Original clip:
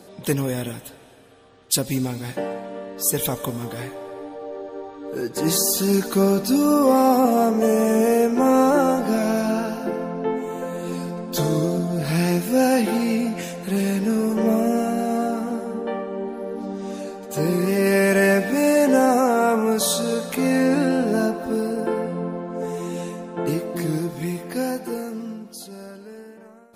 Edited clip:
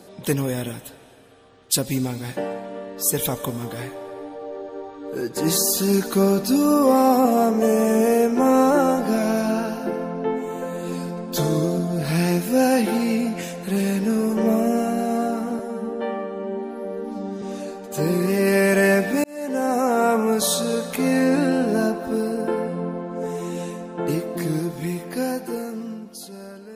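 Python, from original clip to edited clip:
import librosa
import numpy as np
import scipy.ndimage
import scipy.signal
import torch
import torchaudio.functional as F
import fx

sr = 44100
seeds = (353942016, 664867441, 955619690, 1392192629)

y = fx.edit(x, sr, fx.stretch_span(start_s=15.59, length_s=1.22, factor=1.5),
    fx.fade_in_span(start_s=18.63, length_s=0.77), tone=tone)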